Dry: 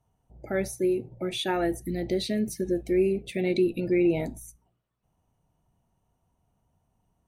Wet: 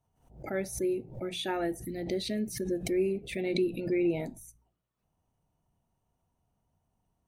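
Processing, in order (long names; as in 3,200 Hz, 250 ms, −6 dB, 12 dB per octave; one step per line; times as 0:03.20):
mains-hum notches 60/120/180 Hz
background raised ahead of every attack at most 110 dB per second
level −5 dB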